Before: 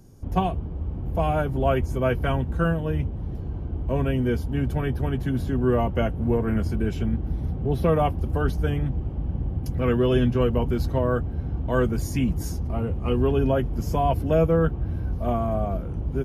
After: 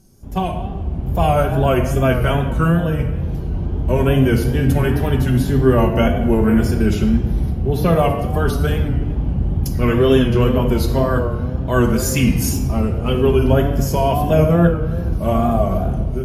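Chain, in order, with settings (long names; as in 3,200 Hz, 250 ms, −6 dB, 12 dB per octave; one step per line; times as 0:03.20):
0:11.87–0:12.39: parametric band 2,500 Hz +4 dB 2.4 octaves
automatic gain control gain up to 11.5 dB
high-shelf EQ 3,800 Hz +10.5 dB
rectangular room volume 1,100 cubic metres, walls mixed, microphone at 1.2 metres
tape wow and flutter 80 cents
level −3.5 dB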